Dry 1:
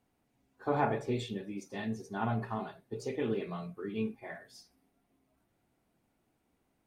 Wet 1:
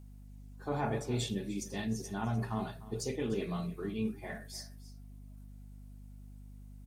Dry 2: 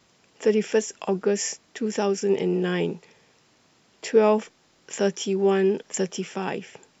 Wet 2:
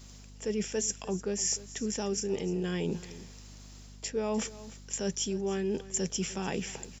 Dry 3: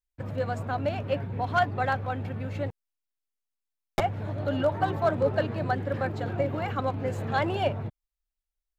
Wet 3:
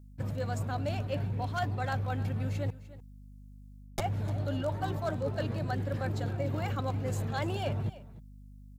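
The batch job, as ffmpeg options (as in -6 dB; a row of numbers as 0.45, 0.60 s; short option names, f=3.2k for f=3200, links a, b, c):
-af "bass=f=250:g=6,treble=f=4k:g=13,areverse,acompressor=threshold=-30dB:ratio=5,areverse,aeval=exprs='val(0)+0.00316*(sin(2*PI*50*n/s)+sin(2*PI*2*50*n/s)/2+sin(2*PI*3*50*n/s)/3+sin(2*PI*4*50*n/s)/4+sin(2*PI*5*50*n/s)/5)':c=same,aecho=1:1:300:0.141"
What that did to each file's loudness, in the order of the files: -0.5, -8.5, -4.5 LU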